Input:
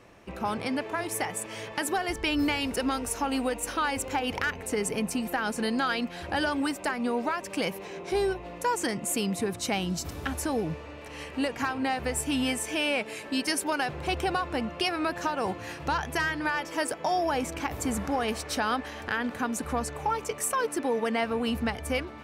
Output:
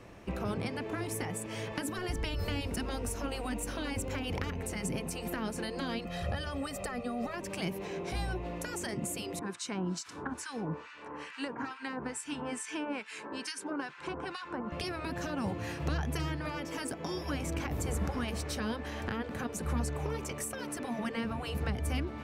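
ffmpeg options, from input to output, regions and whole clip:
-filter_complex "[0:a]asettb=1/sr,asplit=3[a][b][c];[a]atrim=end=6.054[d];[b]atrim=start=6.05:end=7.34,asetpts=PTS-STARTPTS,afade=t=in:d=0.004:c=qsin,afade=t=out:st=1.286:d=0.004:c=qsin,acompressor=threshold=-29dB:ratio=5:attack=3.2:release=140:knee=1:detection=peak,aecho=1:1:1.6:0.87,atrim=end_sample=56889[e];[c]atrim=start=7.336[f];[d][e]acrossfade=d=0.004:c1=hsin:c2=qsin[g];[g][f]acrossfade=d=0.004:c1=qsin:c2=hsin,asettb=1/sr,asplit=3[h][i][j];[h]atrim=end=9.394[k];[i]atrim=start=9.39:end=14.72,asetpts=PTS-STARTPTS,afade=t=in:d=0.004:c=qsin,afade=t=out:st=5.326:d=0.004:c=qsin,highpass=240,equalizer=f=620:t=q:w=4:g=-7,equalizer=f=1k:t=q:w=4:g=9,equalizer=f=1.5k:t=q:w=4:g=8,lowpass=f=9.1k:w=0.5412,lowpass=f=9.1k:w=1.3066,acrossover=split=1400[l][m];[l]aeval=exprs='val(0)*(1-1/2+1/2*cos(2*PI*2.3*n/s))':c=same[n];[m]aeval=exprs='val(0)*(1-1/2-1/2*cos(2*PI*2.3*n/s))':c=same[o];[n][o]amix=inputs=2:normalize=0[p];[j]atrim=start=14.716[q];[k][p]acrossfade=d=0.004:c1=hsin:c2=qsin[r];[r][q]acrossfade=d=0.004:c1=qsin:c2=hsin,afftfilt=real='re*lt(hypot(re,im),0.2)':imag='im*lt(hypot(re,im),0.2)':win_size=1024:overlap=0.75,lowshelf=f=310:g=6.5,acrossover=split=390[s][t];[t]acompressor=threshold=-39dB:ratio=3[u];[s][u]amix=inputs=2:normalize=0"

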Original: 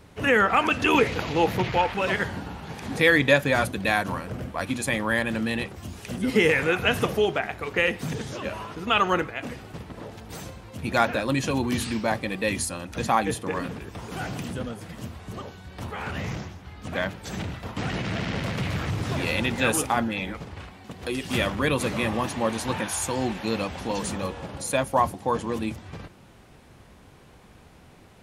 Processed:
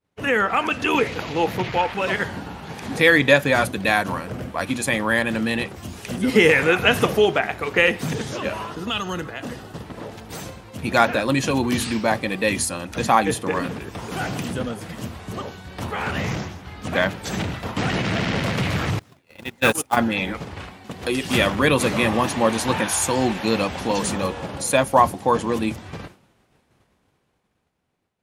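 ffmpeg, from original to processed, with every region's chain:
-filter_complex "[0:a]asettb=1/sr,asplit=3[a][b][c];[a]atrim=end=8.704[d];[b]atrim=start=8.7:end=9.85,asetpts=PTS-STARTPTS,afade=t=in:d=0.004:c=qsin,afade=t=out:st=1.146:d=0.004:c=qsin,equalizer=f=2.3k:w=6.6:g=-11.5,acrossover=split=210|3000[e][f][g];[f]acompressor=threshold=-33dB:ratio=6:attack=3.2:release=140:knee=2.83:detection=peak[h];[e][h][g]amix=inputs=3:normalize=0[i];[c]atrim=start=9.846[j];[d][i]acrossfade=d=0.004:c1=hsin:c2=qsin[k];[k][j]acrossfade=d=0.004:c1=qsin:c2=hsin,asettb=1/sr,asplit=3[l][m][n];[l]atrim=end=18.994[o];[m]atrim=start=18.99:end=19.97,asetpts=PTS-STARTPTS,afade=t=in:d=0.004:c=qsin,afade=t=out:st=0.976:d=0.004:c=qsin,agate=range=-29dB:threshold=-23dB:ratio=16:release=100:detection=peak,highshelf=f=9k:g=5.5,acrusher=bits=4:mode=log:mix=0:aa=0.000001[p];[n]atrim=start=19.966[q];[o][p]acrossfade=d=0.004:c1=hsin:c2=qsin[r];[r][q]acrossfade=d=0.004:c1=qsin:c2=hsin,dynaudnorm=f=470:g=9:m=9dB,lowshelf=f=75:g=-8.5,agate=range=-33dB:threshold=-37dB:ratio=3:detection=peak"

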